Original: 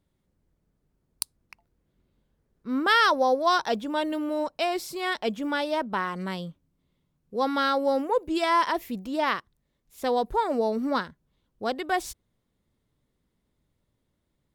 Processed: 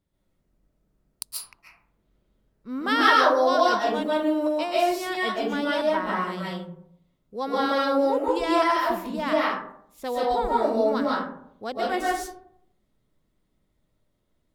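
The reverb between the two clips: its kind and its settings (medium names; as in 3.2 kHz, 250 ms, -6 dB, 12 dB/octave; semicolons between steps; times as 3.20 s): algorithmic reverb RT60 0.69 s, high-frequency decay 0.4×, pre-delay 100 ms, DRR -6 dB; trim -4.5 dB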